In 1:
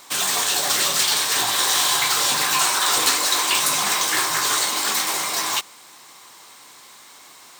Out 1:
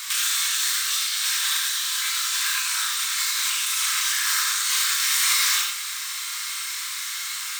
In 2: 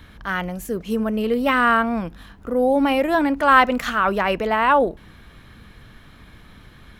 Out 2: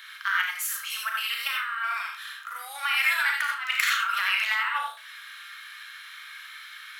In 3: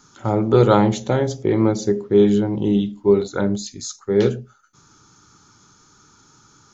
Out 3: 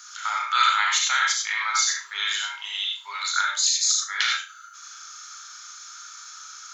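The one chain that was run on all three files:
steep high-pass 1.3 kHz 36 dB/octave; compressor with a negative ratio -31 dBFS, ratio -1; on a send: flutter echo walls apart 6.3 m, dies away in 0.29 s; on the sum: gated-style reverb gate 110 ms rising, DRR 0.5 dB; peak normalisation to -6 dBFS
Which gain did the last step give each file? +3.5 dB, +1.0 dB, +9.0 dB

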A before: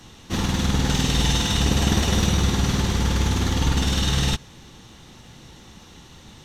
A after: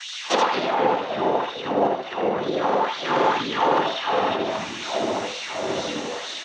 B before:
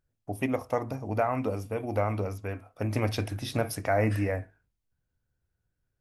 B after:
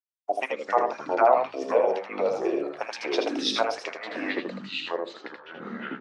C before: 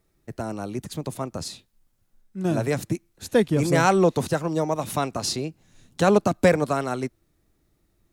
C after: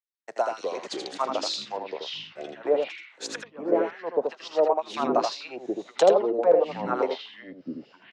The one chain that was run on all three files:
high-pass 160 Hz 24 dB/octave; low-pass that closes with the level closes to 470 Hz, closed at -19 dBFS; low-pass 7.6 kHz 24 dB/octave; bass shelf 270 Hz -8.5 dB; expander -56 dBFS; dynamic bell 1.8 kHz, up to -5 dB, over -49 dBFS, Q 1.5; LFO high-pass sine 2.1 Hz 510–4000 Hz; ever faster or slower copies 121 ms, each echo -5 st, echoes 3, each echo -6 dB; on a send: delay 80 ms -5 dB; on the sum: peak normalisation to -6 dBFS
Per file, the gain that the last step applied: +12.0 dB, +7.0 dB, +4.5 dB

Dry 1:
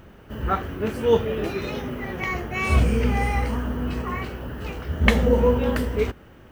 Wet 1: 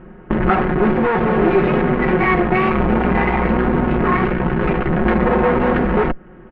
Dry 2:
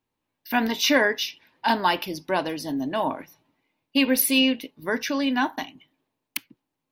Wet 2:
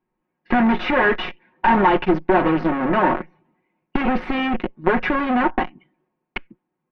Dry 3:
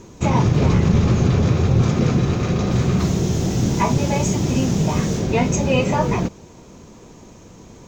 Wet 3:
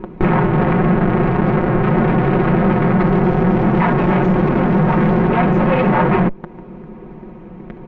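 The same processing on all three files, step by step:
in parallel at +3 dB: fuzz box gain 34 dB, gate -33 dBFS; on the sum: bass shelf 490 Hz +8.5 dB; valve stage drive 11 dB, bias 0.8; peaking EQ 80 Hz -14.5 dB 1.2 oct; compression 2.5:1, threshold -25 dBFS; low-pass 2.2 kHz 24 dB/octave; band-stop 560 Hz, Q 12; comb 5.5 ms, depth 65%; peak normalisation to -3 dBFS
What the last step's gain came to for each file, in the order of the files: +8.0 dB, +6.0 dB, +8.0 dB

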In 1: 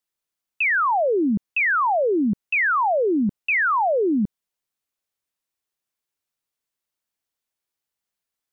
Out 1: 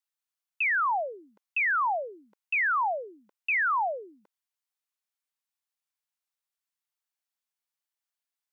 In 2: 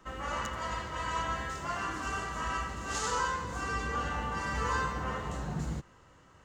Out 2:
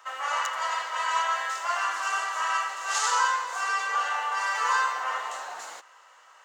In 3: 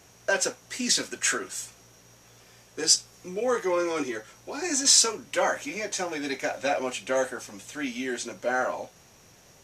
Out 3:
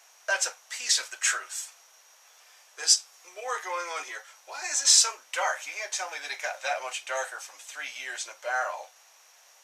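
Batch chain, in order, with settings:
high-pass 700 Hz 24 dB/octave; normalise loudness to -27 LUFS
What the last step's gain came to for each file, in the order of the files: -5.5 dB, +8.0 dB, 0.0 dB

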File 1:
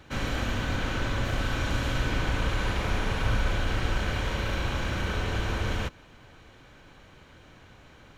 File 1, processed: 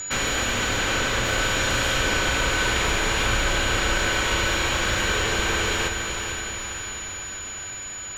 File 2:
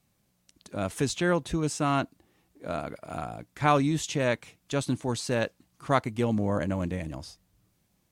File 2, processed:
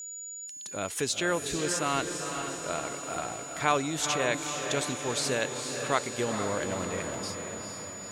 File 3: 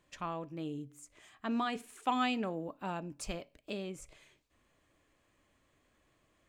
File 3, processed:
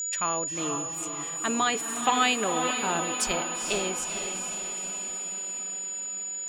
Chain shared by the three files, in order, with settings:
in parallel at -1 dB: compression, threshold -33 dBFS; on the sum: tilt shelf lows -7 dB, about 830 Hz; whistle 6.9 kHz -32 dBFS; echo that smears into a reverb 462 ms, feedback 64%, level -6 dB; dynamic bell 420 Hz, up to +7 dB, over -45 dBFS, Q 1.9; peak normalisation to -9 dBFS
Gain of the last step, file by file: +2.0 dB, -6.0 dB, +3.0 dB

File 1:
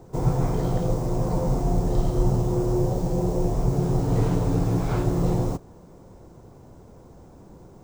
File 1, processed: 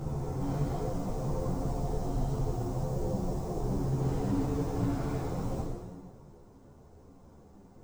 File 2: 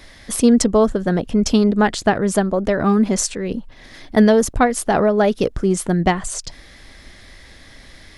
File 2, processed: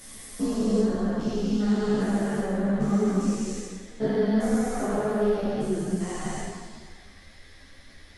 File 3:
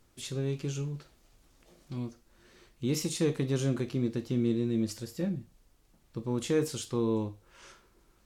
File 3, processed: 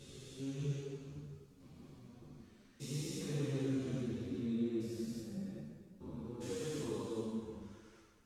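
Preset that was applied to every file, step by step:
spectrogram pixelated in time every 400 ms; plate-style reverb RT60 1.6 s, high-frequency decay 0.85×, DRR -4 dB; three-phase chorus; trim -8 dB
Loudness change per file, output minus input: -9.0 LU, -9.0 LU, -9.0 LU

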